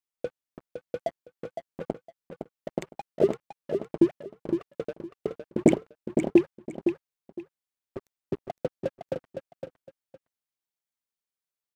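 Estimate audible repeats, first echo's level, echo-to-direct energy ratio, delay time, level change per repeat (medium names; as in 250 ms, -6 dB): 2, -7.0 dB, -7.0 dB, 511 ms, -13.0 dB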